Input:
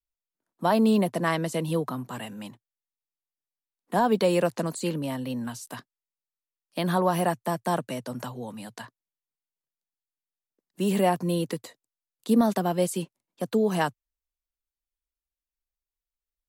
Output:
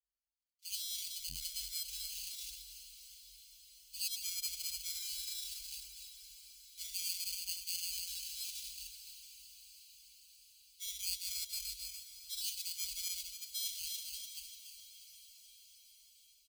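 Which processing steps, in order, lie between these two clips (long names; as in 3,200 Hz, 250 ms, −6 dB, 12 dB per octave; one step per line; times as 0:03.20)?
feedback delay that plays each chunk backwards 147 ms, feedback 59%, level −9.5 dB
parametric band 110 Hz −8.5 dB 2.1 octaves
reversed playback
downward compressor 12 to 1, threshold −36 dBFS, peak gain reduction 18 dB
reversed playback
harmonic and percussive parts rebalanced percussive −13 dB
decimation without filtering 24×
high-pass filter 45 Hz 24 dB per octave
on a send: feedback delay with all-pass diffusion 707 ms, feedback 60%, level −13.5 dB
on the sum: automatic gain control gain up to 5.5 dB
inverse Chebyshev band-stop filter 160–980 Hz, stop band 70 dB
comb filter 4.6 ms, depth 96%
saturating transformer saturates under 1,500 Hz
level +5 dB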